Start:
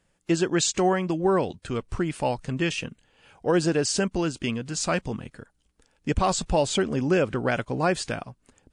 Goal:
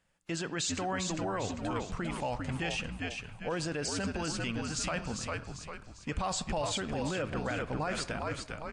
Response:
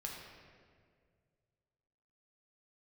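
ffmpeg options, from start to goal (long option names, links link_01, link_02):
-filter_complex "[0:a]equalizer=frequency=1700:width=0.38:gain=4.5,asplit=6[link_01][link_02][link_03][link_04][link_05][link_06];[link_02]adelay=398,afreqshift=-75,volume=-6dB[link_07];[link_03]adelay=796,afreqshift=-150,volume=-13.3dB[link_08];[link_04]adelay=1194,afreqshift=-225,volume=-20.7dB[link_09];[link_05]adelay=1592,afreqshift=-300,volume=-28dB[link_10];[link_06]adelay=1990,afreqshift=-375,volume=-35.3dB[link_11];[link_01][link_07][link_08][link_09][link_10][link_11]amix=inputs=6:normalize=0,asplit=2[link_12][link_13];[1:a]atrim=start_sample=2205,afade=type=out:start_time=0.27:duration=0.01,atrim=end_sample=12348[link_14];[link_13][link_14]afir=irnorm=-1:irlink=0,volume=-13dB[link_15];[link_12][link_15]amix=inputs=2:normalize=0,alimiter=limit=-15.5dB:level=0:latency=1:release=11,equalizer=frequency=370:width=2.9:gain=-6,volume=-8.5dB"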